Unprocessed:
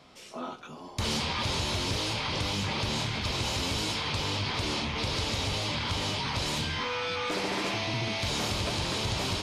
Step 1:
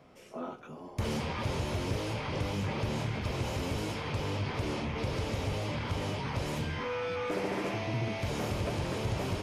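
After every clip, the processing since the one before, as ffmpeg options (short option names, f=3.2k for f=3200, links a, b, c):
-af "equalizer=f=125:t=o:w=1:g=3,equalizer=f=500:t=o:w=1:g=4,equalizer=f=1k:t=o:w=1:g=-3,equalizer=f=4k:t=o:w=1:g=-12,equalizer=f=8k:t=o:w=1:g=-6,volume=-2dB"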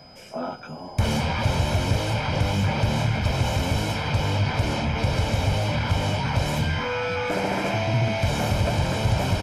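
-af "aecho=1:1:1.3:0.54,aeval=exprs='val(0)+0.00126*sin(2*PI*5000*n/s)':c=same,volume=8.5dB"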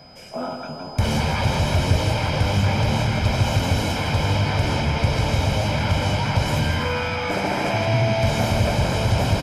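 -af "aecho=1:1:163|326|489|652|815|978|1141|1304:0.473|0.284|0.17|0.102|0.0613|0.0368|0.0221|0.0132,volume=1.5dB"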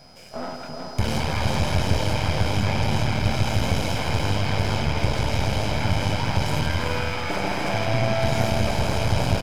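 -af "aeval=exprs='if(lt(val(0),0),0.251*val(0),val(0))':c=same,aecho=1:1:376:0.447"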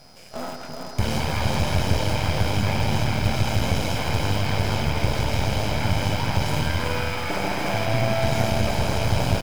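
-af "acrusher=bits=7:dc=4:mix=0:aa=0.000001"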